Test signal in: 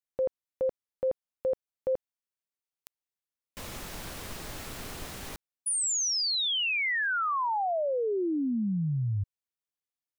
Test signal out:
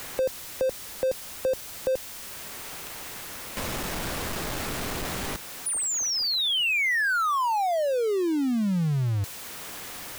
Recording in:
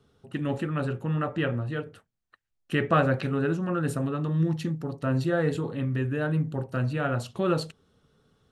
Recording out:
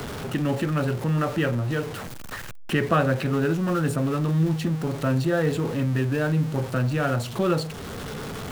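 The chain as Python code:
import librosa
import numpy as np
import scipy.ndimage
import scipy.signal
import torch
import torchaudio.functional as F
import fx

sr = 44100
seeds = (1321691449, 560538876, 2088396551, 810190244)

y = x + 0.5 * 10.0 ** (-34.0 / 20.0) * np.sign(x)
y = fx.band_squash(y, sr, depth_pct=40)
y = y * 10.0 ** (2.0 / 20.0)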